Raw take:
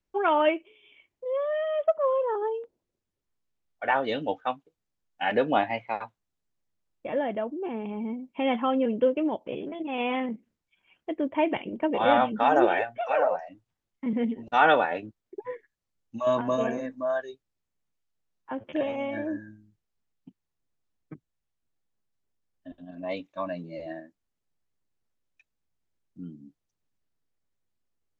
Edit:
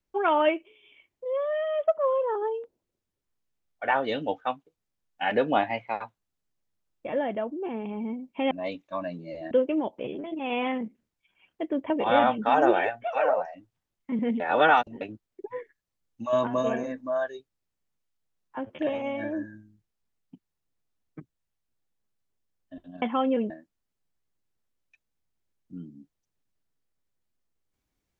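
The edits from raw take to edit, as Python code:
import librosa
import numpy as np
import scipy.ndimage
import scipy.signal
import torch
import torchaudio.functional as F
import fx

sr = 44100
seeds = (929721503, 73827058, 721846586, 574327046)

y = fx.edit(x, sr, fx.swap(start_s=8.51, length_s=0.48, other_s=22.96, other_length_s=1.0),
    fx.cut(start_s=11.38, length_s=0.46),
    fx.reverse_span(start_s=14.34, length_s=0.61), tone=tone)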